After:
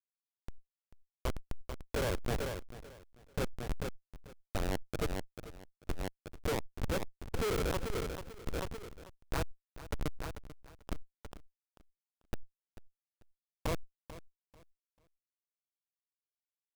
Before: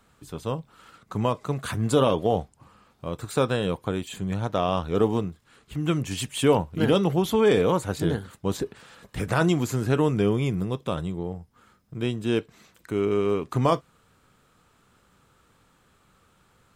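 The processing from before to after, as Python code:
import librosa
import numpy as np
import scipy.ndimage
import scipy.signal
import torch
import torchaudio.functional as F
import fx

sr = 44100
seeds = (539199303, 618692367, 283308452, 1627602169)

y = scipy.signal.sosfilt(scipy.signal.butter(4, 430.0, 'highpass', fs=sr, output='sos'), x)
y = fx.env_flanger(y, sr, rest_ms=11.4, full_db=-19.5)
y = fx.schmitt(y, sr, flips_db=-22.5)
y = fx.echo_feedback(y, sr, ms=441, feedback_pct=25, wet_db=-15.5)
y = fx.sustainer(y, sr, db_per_s=39.0)
y = y * 10.0 ** (2.0 / 20.0)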